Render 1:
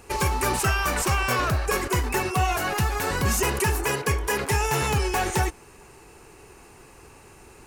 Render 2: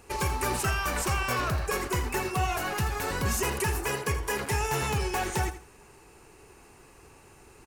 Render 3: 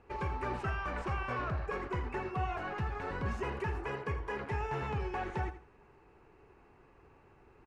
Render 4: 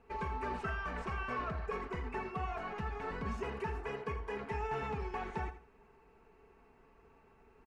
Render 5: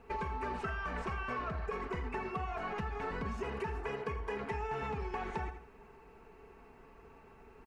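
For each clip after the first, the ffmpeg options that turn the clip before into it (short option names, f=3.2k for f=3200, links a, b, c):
-af "aecho=1:1:82|164|246:0.237|0.0569|0.0137,volume=-5dB"
-af "lowpass=2k,volume=-6.5dB"
-af "aecho=1:1:4.5:0.59,volume=-3.5dB"
-af "acompressor=threshold=-41dB:ratio=6,volume=6.5dB"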